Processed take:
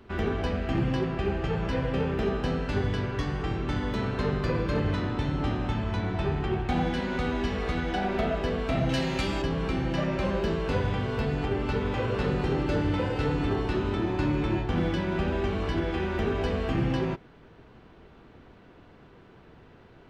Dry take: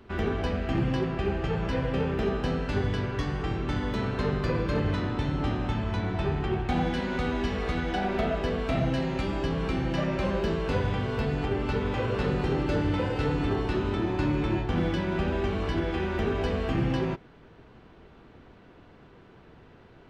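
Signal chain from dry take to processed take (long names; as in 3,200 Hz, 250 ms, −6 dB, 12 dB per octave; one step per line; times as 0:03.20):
0:08.89–0:09.42: high-shelf EQ 2,400 Hz +11 dB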